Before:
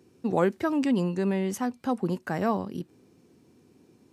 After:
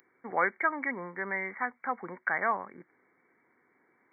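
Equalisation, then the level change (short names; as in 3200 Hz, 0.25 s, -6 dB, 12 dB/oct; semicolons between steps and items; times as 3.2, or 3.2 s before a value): brick-wall FIR low-pass 2300 Hz; tilt +4.5 dB/oct; tilt shelf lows -9.5 dB, about 810 Hz; 0.0 dB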